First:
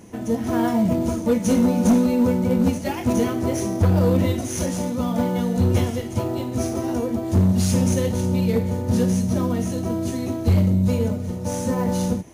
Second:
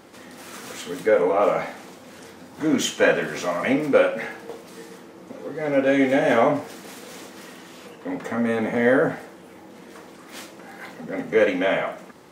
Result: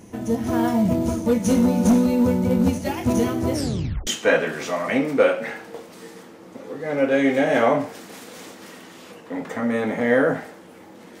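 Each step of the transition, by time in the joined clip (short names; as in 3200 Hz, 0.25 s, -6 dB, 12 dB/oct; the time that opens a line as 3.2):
first
3.53 tape stop 0.54 s
4.07 switch to second from 2.82 s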